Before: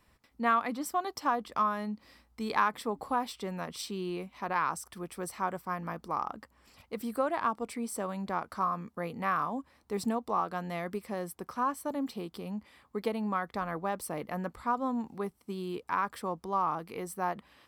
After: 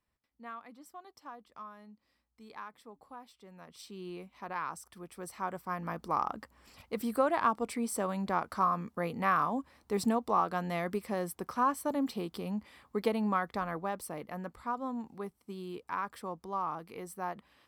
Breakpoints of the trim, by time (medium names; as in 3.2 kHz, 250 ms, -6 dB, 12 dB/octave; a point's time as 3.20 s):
3.41 s -18 dB
4.07 s -7 dB
5.06 s -7 dB
6.13 s +2 dB
13.28 s +2 dB
14.25 s -5 dB